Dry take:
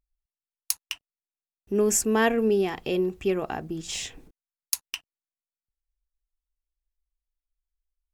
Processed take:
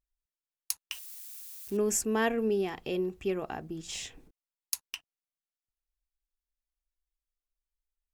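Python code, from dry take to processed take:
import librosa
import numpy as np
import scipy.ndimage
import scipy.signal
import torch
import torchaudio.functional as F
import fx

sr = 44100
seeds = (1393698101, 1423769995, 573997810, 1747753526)

y = fx.crossing_spikes(x, sr, level_db=-30.5, at=(0.92, 1.77))
y = F.gain(torch.from_numpy(y), -6.0).numpy()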